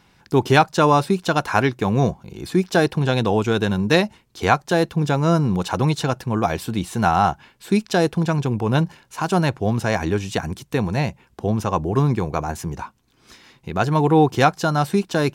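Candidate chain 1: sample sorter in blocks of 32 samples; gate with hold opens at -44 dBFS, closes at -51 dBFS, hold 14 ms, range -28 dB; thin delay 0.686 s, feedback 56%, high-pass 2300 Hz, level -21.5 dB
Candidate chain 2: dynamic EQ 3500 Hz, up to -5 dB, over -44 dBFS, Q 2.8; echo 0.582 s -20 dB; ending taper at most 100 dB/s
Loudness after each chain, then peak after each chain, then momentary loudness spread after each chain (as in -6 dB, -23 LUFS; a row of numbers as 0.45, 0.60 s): -19.5, -24.5 LUFS; -1.5, -4.5 dBFS; 10, 16 LU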